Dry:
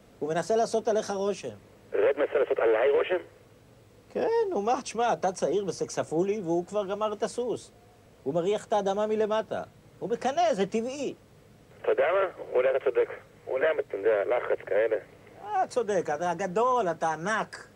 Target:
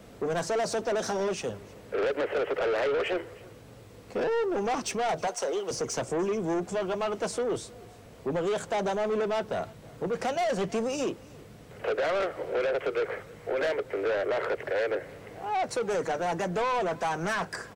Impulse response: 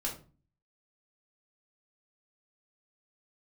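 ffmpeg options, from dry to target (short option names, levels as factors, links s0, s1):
-filter_complex "[0:a]asettb=1/sr,asplit=3[s0][s1][s2];[s0]atrim=end=5.274[s3];[s1]atrim=start=5.27:end=5.71,asetpts=PTS-STARTPTS,afade=t=in:d=0.004:c=qsin,afade=t=out:st=0.436:d=0.004:c=qsin,highpass=560[s4];[s2]atrim=start=5.706[s5];[s3][s4]acrossfade=d=0.004:c1=hsin:c2=qsin[s6];[s6][s5]acrossfade=d=0.004:c1=qsin:c2=hsin,asplit=2[s7][s8];[s8]alimiter=limit=0.0708:level=0:latency=1:release=155,volume=1[s9];[s7][s9]amix=inputs=2:normalize=0,asoftclip=type=tanh:threshold=0.0596,aecho=1:1:318:0.0708"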